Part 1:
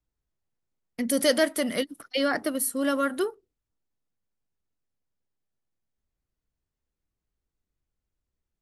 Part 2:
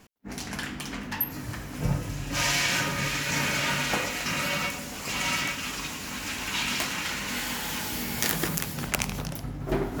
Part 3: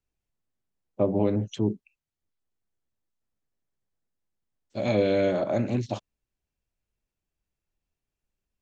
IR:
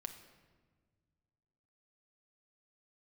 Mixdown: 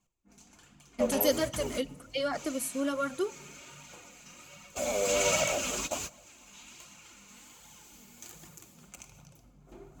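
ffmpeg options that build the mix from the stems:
-filter_complex "[0:a]highshelf=frequency=9400:gain=-5.5,volume=-4.5dB,asplit=2[link_01][link_02];[link_02]volume=-7.5dB[link_03];[1:a]bandreject=frequency=2000:width=22,volume=0dB,asplit=2[link_04][link_05];[link_05]volume=-17dB[link_06];[2:a]deesser=0.75,highpass=frequency=480:width=0.5412,highpass=frequency=480:width=1.3066,aemphasis=mode=reproduction:type=cd,volume=-3dB,asplit=3[link_07][link_08][link_09];[link_08]volume=-3.5dB[link_10];[link_09]apad=whole_len=441037[link_11];[link_04][link_11]sidechaingate=range=-57dB:threshold=-48dB:ratio=16:detection=peak[link_12];[3:a]atrim=start_sample=2205[link_13];[link_03][link_06][link_10]amix=inputs=3:normalize=0[link_14];[link_14][link_13]afir=irnorm=-1:irlink=0[link_15];[link_01][link_12][link_07][link_15]amix=inputs=4:normalize=0,flanger=delay=0.9:depth=4.1:regen=-19:speed=1.3:shape=triangular,superequalizer=11b=0.501:15b=2.82"

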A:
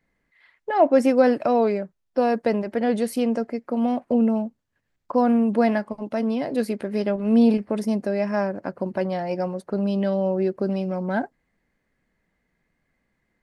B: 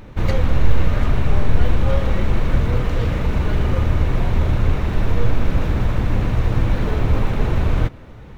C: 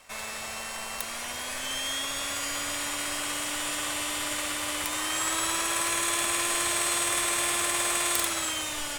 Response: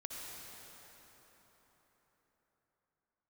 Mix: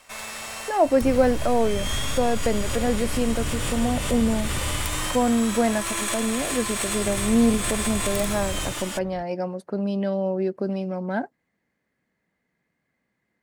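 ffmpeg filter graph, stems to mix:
-filter_complex "[0:a]highpass=99,volume=-2dB,asplit=2[link_01][link_02];[1:a]alimiter=limit=-18dB:level=0:latency=1,adelay=850,volume=6.5dB,afade=type=out:start_time=4.76:duration=0.59:silence=0.223872,afade=type=in:start_time=6.84:duration=0.35:silence=0.316228[link_03];[2:a]volume=-1dB,asplit=2[link_04][link_05];[link_05]volume=-5dB[link_06];[link_02]apad=whole_len=396364[link_07];[link_04][link_07]sidechaincompress=threshold=-31dB:ratio=8:attack=9.1:release=146[link_08];[3:a]atrim=start_sample=2205[link_09];[link_06][link_09]afir=irnorm=-1:irlink=0[link_10];[link_01][link_03][link_08][link_10]amix=inputs=4:normalize=0"

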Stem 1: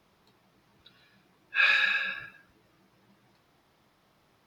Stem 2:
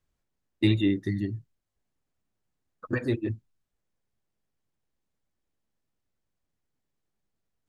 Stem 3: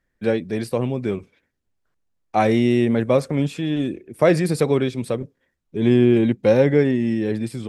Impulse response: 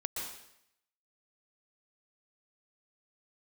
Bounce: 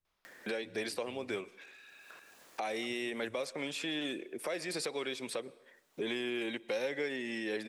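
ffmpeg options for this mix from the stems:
-filter_complex "[0:a]highpass=frequency=1200:poles=1,acompressor=threshold=-33dB:ratio=4,adelay=50,volume=-17.5dB[link_01];[1:a]acompressor=threshold=-32dB:ratio=6,volume=-16.5dB[link_02];[2:a]acrossover=split=950|2000|7800[link_03][link_04][link_05][link_06];[link_03]acompressor=threshold=-29dB:ratio=4[link_07];[link_04]acompressor=threshold=-47dB:ratio=4[link_08];[link_05]acompressor=threshold=-37dB:ratio=4[link_09];[link_06]acompressor=threshold=-54dB:ratio=4[link_10];[link_07][link_08][link_09][link_10]amix=inputs=4:normalize=0,highpass=450,acompressor=mode=upward:threshold=-35dB:ratio=2.5,adelay=250,volume=-0.5dB,asplit=2[link_11][link_12];[link_12]volume=-22.5dB[link_13];[link_01][link_02]amix=inputs=2:normalize=0,aeval=exprs='0.0112*(cos(1*acos(clip(val(0)/0.0112,-1,1)))-cos(1*PI/2))+0.00251*(cos(5*acos(clip(val(0)/0.0112,-1,1)))-cos(5*PI/2))':channel_layout=same,acompressor=threshold=-55dB:ratio=6,volume=0dB[link_14];[3:a]atrim=start_sample=2205[link_15];[link_13][link_15]afir=irnorm=-1:irlink=0[link_16];[link_11][link_14][link_16]amix=inputs=3:normalize=0,alimiter=level_in=1.5dB:limit=-24dB:level=0:latency=1:release=291,volume=-1.5dB"

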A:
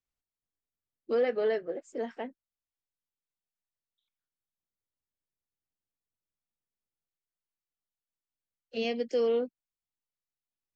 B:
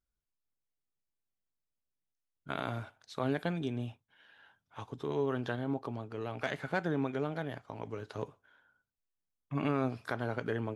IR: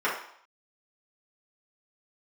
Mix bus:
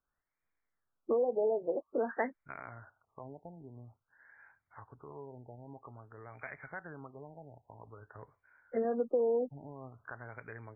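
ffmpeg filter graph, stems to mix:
-filter_complex "[0:a]acompressor=threshold=-34dB:ratio=4,volume=2.5dB[link_01];[1:a]asubboost=boost=4.5:cutoff=100,acompressor=threshold=-54dB:ratio=1.5,volume=-8dB[link_02];[link_01][link_02]amix=inputs=2:normalize=0,equalizer=frequency=1900:width=0.42:gain=10.5,afftfilt=real='re*lt(b*sr/1024,920*pow(2500/920,0.5+0.5*sin(2*PI*0.5*pts/sr)))':imag='im*lt(b*sr/1024,920*pow(2500/920,0.5+0.5*sin(2*PI*0.5*pts/sr)))':win_size=1024:overlap=0.75"

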